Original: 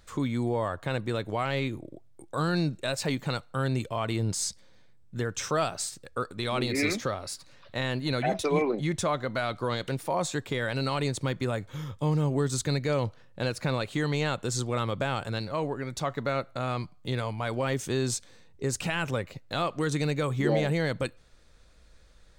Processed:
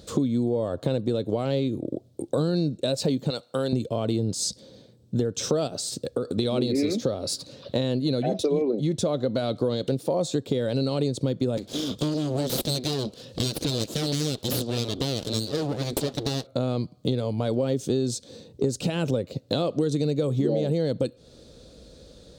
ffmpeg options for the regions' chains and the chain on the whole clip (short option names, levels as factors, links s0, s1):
-filter_complex "[0:a]asettb=1/sr,asplit=3[s0][s1][s2];[s0]atrim=end=3.304[s3];[s1]atrim=start=3.3:end=3.73,asetpts=PTS-STARTPTS,afade=t=in:d=0.004:c=qsin,afade=t=out:st=0.426:d=0.004:c=qsin,highpass=f=190:p=1,lowshelf=f=440:g=-11[s4];[s2]atrim=start=3.726[s5];[s3][s4]acrossfade=d=0.004:c1=hsin:c2=qsin[s6];[s6][s5]acrossfade=d=0.004:c1=qsin:c2=hsin,asettb=1/sr,asplit=3[s7][s8][s9];[s7]atrim=end=5.674[s10];[s8]atrim=start=5.67:end=6.38,asetpts=PTS-STARTPTS,afade=t=in:d=0.004:c=qsin,afade=t=out:st=0.706:d=0.004:c=qsin,acompressor=threshold=0.0178:ratio=6:attack=3.2:release=140:knee=1:detection=peak,highpass=42[s11];[s9]atrim=start=6.376[s12];[s10][s11]acrossfade=d=0.004:c1=hsin:c2=qsin[s13];[s13][s12]acrossfade=d=0.004:c1=qsin:c2=hsin,asettb=1/sr,asplit=3[s14][s15][s16];[s14]atrim=end=11.574[s17];[s15]atrim=start=11.57:end=16.47,asetpts=PTS-STARTPTS,afade=t=in:d=0.004:c=qsin,afade=t=out:st=4.896:d=0.004:c=qsin,equalizer=f=4500:w=0.47:g=13.5,aeval=exprs='abs(val(0))':c=same,acompressor=mode=upward:threshold=0.00891:ratio=2.5:attack=3.2:release=140:knee=2.83:detection=peak[s18];[s16]atrim=start=16.466[s19];[s17][s18]acrossfade=d=0.004:c1=hsin:c2=qsin[s20];[s20][s19]acrossfade=d=0.004:c1=qsin:c2=hsin,equalizer=f=125:t=o:w=1:g=5,equalizer=f=250:t=o:w=1:g=9,equalizer=f=500:t=o:w=1:g=11,equalizer=f=1000:t=o:w=1:g=-6,equalizer=f=2000:t=o:w=1:g=-11,equalizer=f=4000:t=o:w=1:g=8,acompressor=threshold=0.0282:ratio=5,highpass=53,volume=2.51"